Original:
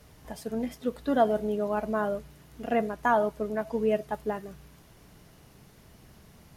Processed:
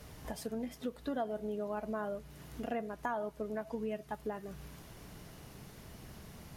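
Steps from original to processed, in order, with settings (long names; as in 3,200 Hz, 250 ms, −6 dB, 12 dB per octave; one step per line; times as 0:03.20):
0:03.75–0:04.19: parametric band 520 Hz −6 dB 0.77 octaves
downward compressor 3 to 1, threshold −42 dBFS, peak gain reduction 18 dB
level +3 dB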